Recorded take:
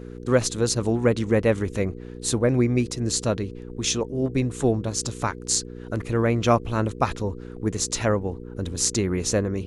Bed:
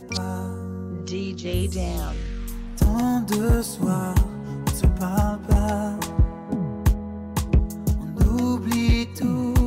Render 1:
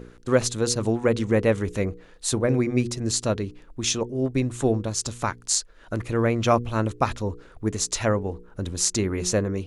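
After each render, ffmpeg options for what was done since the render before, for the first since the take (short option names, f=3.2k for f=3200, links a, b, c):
-af "bandreject=f=60:t=h:w=4,bandreject=f=120:t=h:w=4,bandreject=f=180:t=h:w=4,bandreject=f=240:t=h:w=4,bandreject=f=300:t=h:w=4,bandreject=f=360:t=h:w=4,bandreject=f=420:t=h:w=4,bandreject=f=480:t=h:w=4"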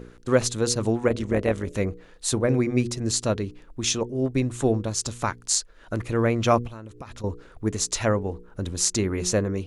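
-filter_complex "[0:a]asettb=1/sr,asplit=3[a][b][c];[a]atrim=end=1.084[d];[b]atrim=start=1.08:end=1.75,asetpts=PTS-STARTPTS,afade=t=in:d=0.004:c=qsin,afade=t=out:st=0.666:d=0.004:c=qsin,tremolo=f=150:d=0.667[e];[c]atrim=start=1.746[f];[d][e]acrossfade=d=0.004:c1=hsin:c2=qsin[g];[g][f]acrossfade=d=0.004:c1=qsin:c2=hsin,asettb=1/sr,asplit=3[h][i][j];[h]atrim=end=6.674[k];[i]atrim=start=6.67:end=7.24,asetpts=PTS-STARTPTS,afade=t=in:d=0.004:c=qsin,afade=t=out:st=0.566:d=0.004:c=qsin,acompressor=threshold=-35dB:ratio=10:attack=3.2:release=140:knee=1:detection=peak[l];[j]atrim=start=7.236[m];[k][l]acrossfade=d=0.004:c1=hsin:c2=qsin[n];[n][m]acrossfade=d=0.004:c1=qsin:c2=hsin"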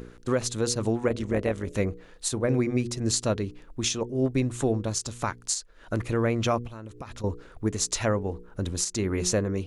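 -af "alimiter=limit=-14.5dB:level=0:latency=1:release=301,acompressor=mode=upward:threshold=-45dB:ratio=2.5"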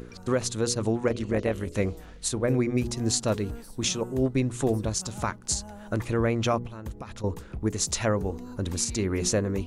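-filter_complex "[1:a]volume=-19.5dB[a];[0:a][a]amix=inputs=2:normalize=0"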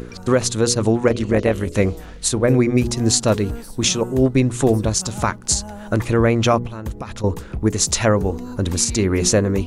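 -af "volume=9dB"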